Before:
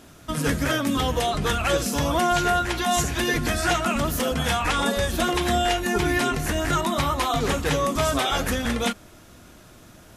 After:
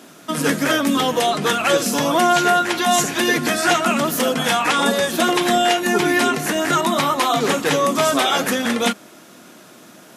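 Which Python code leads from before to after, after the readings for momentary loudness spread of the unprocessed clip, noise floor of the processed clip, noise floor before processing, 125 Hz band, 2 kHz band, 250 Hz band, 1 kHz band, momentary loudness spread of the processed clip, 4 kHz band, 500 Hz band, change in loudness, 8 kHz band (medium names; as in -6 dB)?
3 LU, -45 dBFS, -49 dBFS, -3.5 dB, +6.0 dB, +5.5 dB, +6.0 dB, 3 LU, +6.0 dB, +6.0 dB, +5.5 dB, +6.0 dB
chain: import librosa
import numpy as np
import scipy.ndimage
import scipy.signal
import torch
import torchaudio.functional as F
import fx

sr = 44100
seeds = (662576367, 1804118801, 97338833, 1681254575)

y = scipy.signal.sosfilt(scipy.signal.butter(4, 180.0, 'highpass', fs=sr, output='sos'), x)
y = F.gain(torch.from_numpy(y), 6.0).numpy()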